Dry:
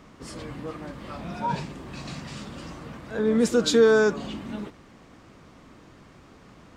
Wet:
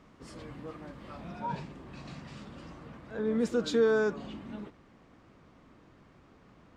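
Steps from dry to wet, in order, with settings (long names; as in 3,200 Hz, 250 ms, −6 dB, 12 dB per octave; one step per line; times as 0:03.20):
high-shelf EQ 5,000 Hz −6 dB, from 0:01.32 −11 dB
level −7.5 dB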